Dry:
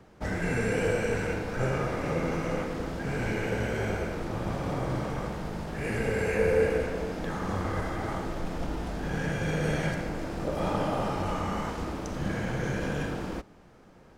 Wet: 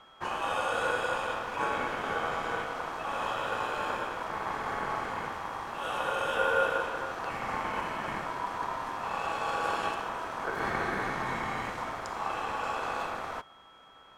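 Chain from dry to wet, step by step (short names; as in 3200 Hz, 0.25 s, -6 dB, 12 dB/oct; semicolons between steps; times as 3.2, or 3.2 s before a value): whine 2300 Hz -53 dBFS; ring modulator 980 Hz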